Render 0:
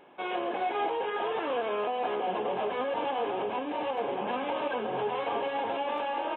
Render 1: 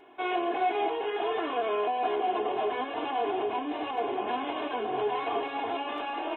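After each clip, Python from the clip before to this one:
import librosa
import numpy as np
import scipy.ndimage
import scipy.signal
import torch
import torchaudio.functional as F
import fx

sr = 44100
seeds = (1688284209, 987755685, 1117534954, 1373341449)

y = x + 0.91 * np.pad(x, (int(2.8 * sr / 1000.0), 0))[:len(x)]
y = y * librosa.db_to_amplitude(-1.5)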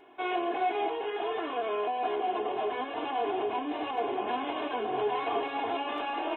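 y = fx.rider(x, sr, range_db=10, speed_s=2.0)
y = y * librosa.db_to_amplitude(-1.5)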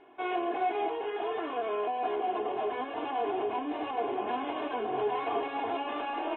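y = fx.air_absorb(x, sr, metres=220.0)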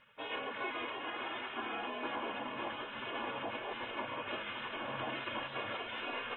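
y = fx.spec_gate(x, sr, threshold_db=-15, keep='weak')
y = y + 10.0 ** (-8.0 / 20.0) * np.pad(y, (int(567 * sr / 1000.0), 0))[:len(y)]
y = y * librosa.db_to_amplitude(3.0)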